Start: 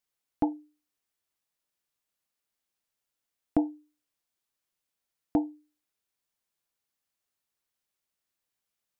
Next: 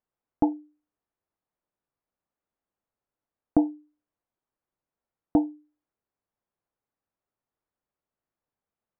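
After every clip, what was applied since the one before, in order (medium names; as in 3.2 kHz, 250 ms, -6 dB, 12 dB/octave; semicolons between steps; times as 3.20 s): low-pass 1.1 kHz 12 dB/octave; trim +4.5 dB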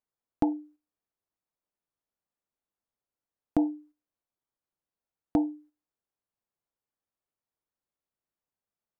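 gate -54 dBFS, range -9 dB; peak limiter -15 dBFS, peak gain reduction 6.5 dB; compression, threshold -24 dBFS, peak gain reduction 4.5 dB; trim +3.5 dB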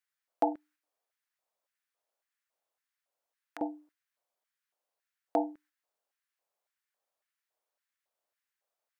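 peak limiter -16 dBFS, peak gain reduction 4.5 dB; LFO high-pass square 1.8 Hz 590–1700 Hz; trim +3 dB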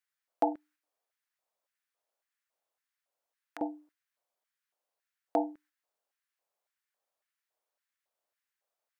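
no audible change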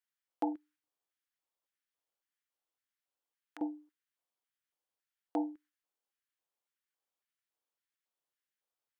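graphic EQ with 31 bands 315 Hz +7 dB, 630 Hz -8 dB, 3.15 kHz +4 dB; trim -6 dB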